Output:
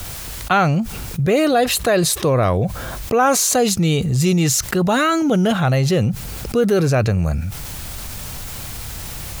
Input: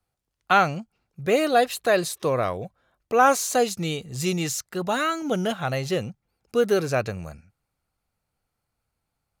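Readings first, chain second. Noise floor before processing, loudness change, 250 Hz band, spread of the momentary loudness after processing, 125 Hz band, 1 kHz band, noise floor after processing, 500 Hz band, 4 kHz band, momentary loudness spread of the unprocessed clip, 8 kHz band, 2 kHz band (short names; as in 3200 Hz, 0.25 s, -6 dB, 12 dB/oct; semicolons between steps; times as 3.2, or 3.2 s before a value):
-81 dBFS, +6.0 dB, +10.5 dB, 14 LU, +14.0 dB, +3.0 dB, -31 dBFS, +5.0 dB, +8.0 dB, 13 LU, +10.5 dB, +4.0 dB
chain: low shelf 210 Hz +11.5 dB; requantised 12-bit, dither triangular; fast leveller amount 70%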